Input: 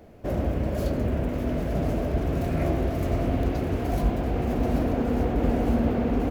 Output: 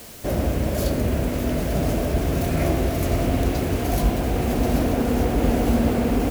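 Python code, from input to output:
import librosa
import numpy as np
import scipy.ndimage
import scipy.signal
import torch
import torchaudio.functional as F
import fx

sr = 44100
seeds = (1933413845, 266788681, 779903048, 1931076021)

p1 = fx.high_shelf(x, sr, hz=3200.0, db=11.0)
p2 = fx.quant_dither(p1, sr, seeds[0], bits=6, dither='triangular')
y = p1 + (p2 * librosa.db_to_amplitude(-6.5))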